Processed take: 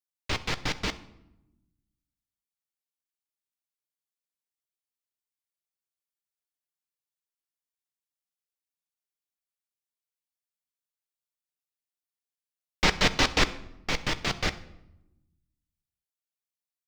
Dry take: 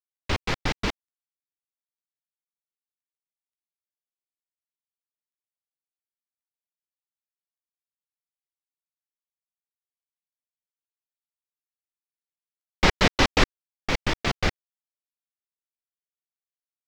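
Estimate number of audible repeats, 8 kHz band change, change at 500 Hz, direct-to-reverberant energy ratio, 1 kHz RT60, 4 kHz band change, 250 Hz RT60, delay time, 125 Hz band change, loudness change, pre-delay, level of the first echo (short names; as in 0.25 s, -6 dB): 1, +0.5 dB, -5.0 dB, 10.5 dB, 0.80 s, -0.5 dB, 1.3 s, 66 ms, -5.0 dB, -2.5 dB, 7 ms, -22.0 dB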